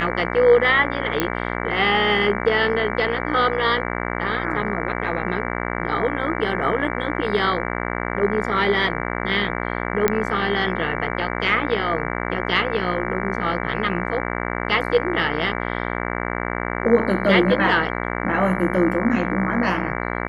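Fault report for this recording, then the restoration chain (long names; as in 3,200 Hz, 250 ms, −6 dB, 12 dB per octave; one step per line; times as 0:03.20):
mains buzz 60 Hz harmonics 38 −26 dBFS
0:01.20: click −4 dBFS
0:10.08: click −3 dBFS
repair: click removal
hum removal 60 Hz, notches 38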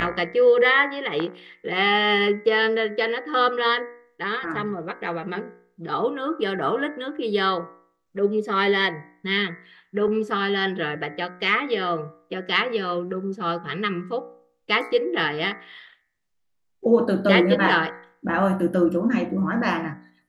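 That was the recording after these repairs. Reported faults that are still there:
none of them is left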